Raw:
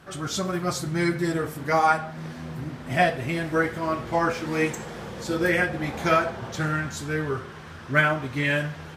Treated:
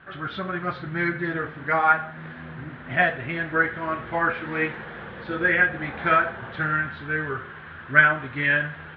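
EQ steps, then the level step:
Butterworth low-pass 3,700 Hz 48 dB per octave
parametric band 1,600 Hz +11 dB 0.82 octaves
−4.0 dB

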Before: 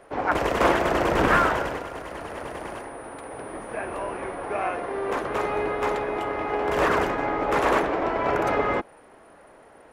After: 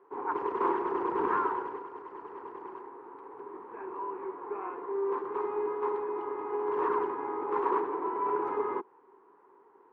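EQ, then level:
pair of resonant band-passes 620 Hz, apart 1.3 octaves
high-frequency loss of the air 56 metres
0.0 dB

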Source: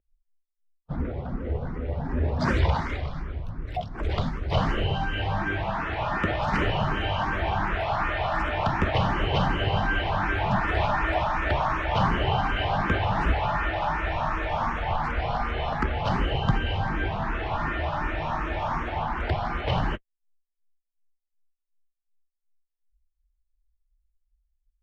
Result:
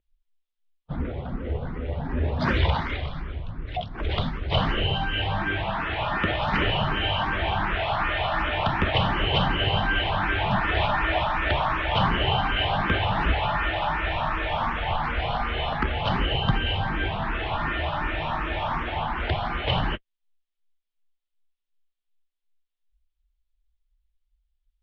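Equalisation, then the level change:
low-pass with resonance 3,400 Hz, resonance Q 2.5
0.0 dB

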